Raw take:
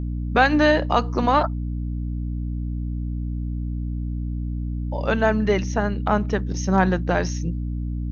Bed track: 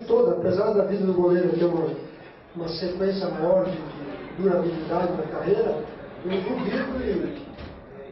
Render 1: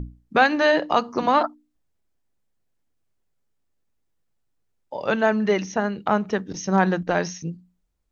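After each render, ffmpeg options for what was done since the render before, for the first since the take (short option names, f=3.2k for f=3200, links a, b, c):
-af "bandreject=f=60:t=h:w=6,bandreject=f=120:t=h:w=6,bandreject=f=180:t=h:w=6,bandreject=f=240:t=h:w=6,bandreject=f=300:t=h:w=6"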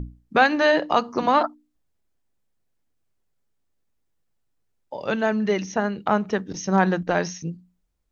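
-filter_complex "[0:a]asettb=1/sr,asplit=3[a][b][c];[a]atrim=end=4.954[d];[b]atrim=start=4.95:end=5.68,asetpts=PTS-STARTPTS,afade=t=in:d=0.004:c=qsin,afade=t=out:st=0.726:d=0.004:c=qsin,equalizer=f=990:w=0.53:g=-4[e];[c]atrim=start=5.676[f];[d][e]acrossfade=d=0.004:c1=hsin:c2=qsin[g];[g][f]acrossfade=d=0.004:c1=qsin:c2=hsin"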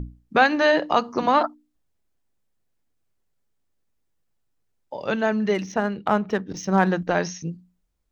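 -filter_complex "[0:a]asettb=1/sr,asplit=3[a][b][c];[a]atrim=end=5.544[d];[b]atrim=start=5.54:end=6.89,asetpts=PTS-STARTPTS,afade=t=in:d=0.004:c=qsin,afade=t=out:st=1.346:d=0.004:c=qsin,adynamicsmooth=sensitivity=7:basefreq=5k[e];[c]atrim=start=6.886[f];[d][e]acrossfade=d=0.004:c1=hsin:c2=qsin[g];[g][f]acrossfade=d=0.004:c1=qsin:c2=hsin"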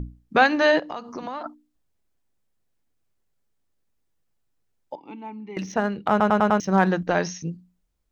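-filter_complex "[0:a]asettb=1/sr,asplit=3[a][b][c];[a]atrim=end=0.794[d];[b]atrim=start=0.79:end=1.46,asetpts=PTS-STARTPTS,afade=t=in:d=0.004:c=qsin,afade=t=out:st=0.666:d=0.004:c=qsin,acompressor=threshold=-31dB:ratio=4:attack=3.2:release=140:knee=1:detection=peak[e];[c]atrim=start=1.456[f];[d][e]acrossfade=d=0.004:c1=hsin:c2=qsin[g];[g][f]acrossfade=d=0.004:c1=qsin:c2=hsin,asettb=1/sr,asplit=3[h][i][j];[h]atrim=end=4.954[k];[i]atrim=start=4.95:end=5.57,asetpts=PTS-STARTPTS,afade=t=in:d=0.004:c=qsin,afade=t=out:st=0.616:d=0.004:c=qsin,asplit=3[l][m][n];[l]bandpass=f=300:t=q:w=8,volume=0dB[o];[m]bandpass=f=870:t=q:w=8,volume=-6dB[p];[n]bandpass=f=2.24k:t=q:w=8,volume=-9dB[q];[o][p][q]amix=inputs=3:normalize=0[r];[j]atrim=start=5.566[s];[k][r]acrossfade=d=0.004:c1=hsin:c2=qsin[t];[t][s]acrossfade=d=0.004:c1=qsin:c2=hsin,asplit=6[u][v][w][x][y][z];[u]atrim=end=6.202[aa];[v]atrim=start=6.098:end=6.202[ab];[w]atrim=start=6.098:end=6.202[ac];[x]atrim=start=6.098:end=6.202[ad];[y]atrim=start=6.098:end=6.202[ae];[z]atrim=start=6.598[af];[aa][ab]acrossfade=d=0.004:c1=hsin:c2=hsin[ag];[ag][ac]acrossfade=d=0.004:c1=hsin:c2=hsin[ah];[ah][ad]acrossfade=d=0.004:c1=hsin:c2=hsin[ai];[ai][ae]acrossfade=d=0.004:c1=hsin:c2=hsin[aj];[aj][af]acrossfade=d=0.004:c1=hsin:c2=hsin"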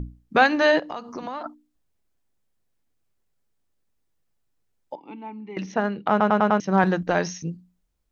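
-filter_complex "[0:a]asettb=1/sr,asplit=3[a][b][c];[a]atrim=end=4.944[d];[b]atrim=start=4.94:end=6.84,asetpts=PTS-STARTPTS,afade=t=in:d=0.004:c=qsin,afade=t=out:st=1.896:d=0.004:c=qsin,highpass=120,lowpass=4.7k[e];[c]atrim=start=6.836[f];[d][e]acrossfade=d=0.004:c1=hsin:c2=qsin[g];[g][f]acrossfade=d=0.004:c1=qsin:c2=hsin"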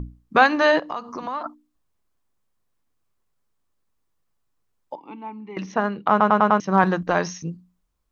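-af "equalizer=f=1.1k:w=2.9:g=8"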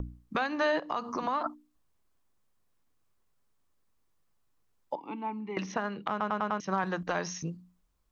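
-filter_complex "[0:a]acrossover=split=490|1400[a][b][c];[a]acompressor=threshold=-34dB:ratio=4[d];[b]acompressor=threshold=-30dB:ratio=4[e];[c]acompressor=threshold=-35dB:ratio=4[f];[d][e][f]amix=inputs=3:normalize=0,acrossover=split=2100[g][h];[g]alimiter=limit=-19dB:level=0:latency=1:release=262[i];[i][h]amix=inputs=2:normalize=0"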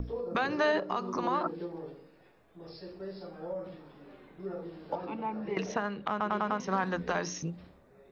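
-filter_complex "[1:a]volume=-17.5dB[a];[0:a][a]amix=inputs=2:normalize=0"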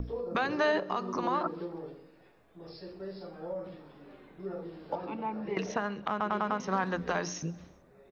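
-af "aecho=1:1:131|262|393:0.0631|0.0341|0.0184"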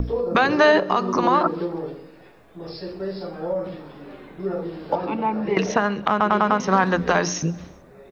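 -af "volume=12dB"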